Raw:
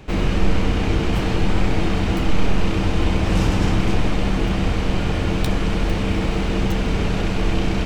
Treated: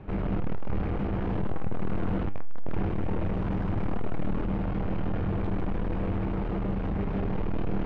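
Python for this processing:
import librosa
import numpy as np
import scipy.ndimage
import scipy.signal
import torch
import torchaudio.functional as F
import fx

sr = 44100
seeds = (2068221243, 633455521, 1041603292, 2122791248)

p1 = fx.hum_notches(x, sr, base_hz=60, count=10)
p2 = p1 + fx.echo_single(p1, sr, ms=152, db=-3.5, dry=0)
p3 = np.clip(p2, -10.0 ** (-19.5 / 20.0), 10.0 ** (-19.5 / 20.0))
p4 = fx.rider(p3, sr, range_db=10, speed_s=0.5)
p5 = 10.0 ** (-22.5 / 20.0) * np.tanh(p4 / 10.0 ** (-22.5 / 20.0))
p6 = scipy.signal.sosfilt(scipy.signal.butter(2, 1400.0, 'lowpass', fs=sr, output='sos'), p5)
p7 = fx.peak_eq(p6, sr, hz=140.0, db=3.5, octaves=1.7)
p8 = fx.comb_fb(p7, sr, f0_hz=100.0, decay_s=0.37, harmonics='all', damping=0.0, mix_pct=60)
y = p8 * 10.0 ** (2.0 / 20.0)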